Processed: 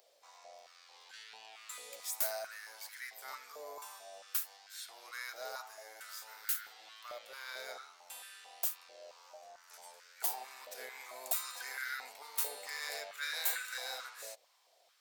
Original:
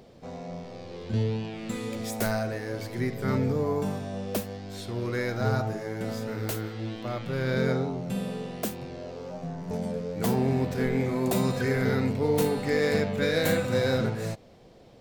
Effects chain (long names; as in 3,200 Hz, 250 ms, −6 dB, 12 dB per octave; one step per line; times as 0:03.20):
first difference
high-pass on a step sequencer 4.5 Hz 580–1,500 Hz
level −1 dB